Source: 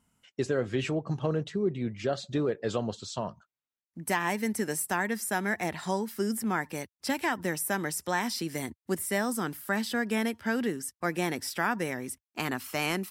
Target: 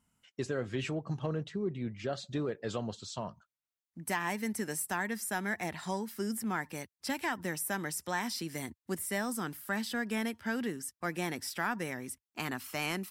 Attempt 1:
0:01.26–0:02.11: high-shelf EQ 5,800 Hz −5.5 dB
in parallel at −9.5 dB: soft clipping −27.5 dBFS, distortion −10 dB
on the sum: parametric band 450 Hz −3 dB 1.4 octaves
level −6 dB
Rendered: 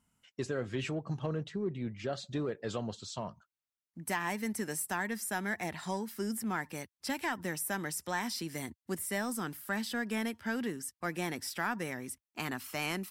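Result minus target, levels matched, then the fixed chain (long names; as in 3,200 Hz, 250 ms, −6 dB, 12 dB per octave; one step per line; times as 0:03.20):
soft clipping: distortion +7 dB
0:01.26–0:02.11: high-shelf EQ 5,800 Hz −5.5 dB
in parallel at −9.5 dB: soft clipping −20.5 dBFS, distortion −17 dB
on the sum: parametric band 450 Hz −3 dB 1.4 octaves
level −6 dB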